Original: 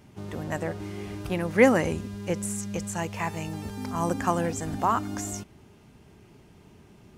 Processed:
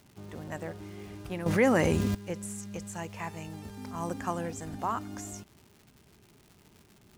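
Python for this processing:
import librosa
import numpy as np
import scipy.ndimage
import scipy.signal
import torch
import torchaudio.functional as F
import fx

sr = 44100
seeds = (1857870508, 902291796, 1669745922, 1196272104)

y = fx.dmg_crackle(x, sr, seeds[0], per_s=260.0, level_db=-38.0)
y = fx.env_flatten(y, sr, amount_pct=70, at=(1.46, 2.15))
y = y * librosa.db_to_amplitude(-7.5)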